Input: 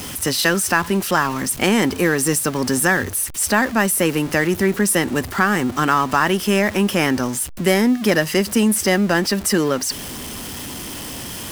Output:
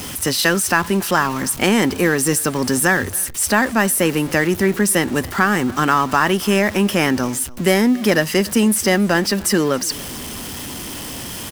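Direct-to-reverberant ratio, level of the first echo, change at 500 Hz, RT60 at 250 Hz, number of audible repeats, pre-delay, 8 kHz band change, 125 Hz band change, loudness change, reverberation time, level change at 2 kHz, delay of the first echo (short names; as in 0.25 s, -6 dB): none, -23.5 dB, +1.0 dB, none, 1, none, +1.0 dB, +1.0 dB, +1.0 dB, none, +1.0 dB, 0.28 s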